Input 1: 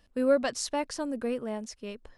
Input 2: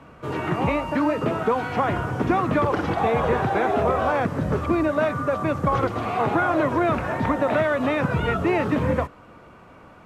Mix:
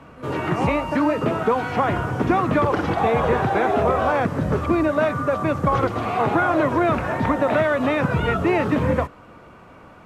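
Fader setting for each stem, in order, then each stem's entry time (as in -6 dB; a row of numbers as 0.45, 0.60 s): -16.0, +2.0 dB; 0.00, 0.00 s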